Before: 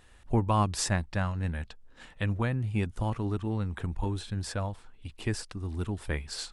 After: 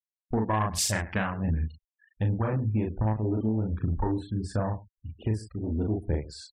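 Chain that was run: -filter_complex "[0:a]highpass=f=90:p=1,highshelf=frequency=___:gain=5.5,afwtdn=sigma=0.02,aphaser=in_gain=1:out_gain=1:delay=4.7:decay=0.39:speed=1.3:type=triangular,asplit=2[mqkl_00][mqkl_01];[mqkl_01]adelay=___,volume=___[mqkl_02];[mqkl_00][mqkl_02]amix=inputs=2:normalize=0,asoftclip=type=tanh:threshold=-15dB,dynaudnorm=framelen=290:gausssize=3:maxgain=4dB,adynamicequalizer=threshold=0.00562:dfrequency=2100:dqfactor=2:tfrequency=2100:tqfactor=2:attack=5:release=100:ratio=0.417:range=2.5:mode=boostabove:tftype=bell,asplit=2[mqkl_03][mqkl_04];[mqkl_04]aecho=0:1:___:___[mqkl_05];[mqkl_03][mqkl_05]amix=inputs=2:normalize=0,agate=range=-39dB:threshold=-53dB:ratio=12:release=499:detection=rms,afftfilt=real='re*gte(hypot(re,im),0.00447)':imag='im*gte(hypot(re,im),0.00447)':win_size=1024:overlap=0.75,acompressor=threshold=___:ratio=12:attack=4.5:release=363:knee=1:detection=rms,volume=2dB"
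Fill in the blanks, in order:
6100, 37, -2dB, 103, 0.0944, -23dB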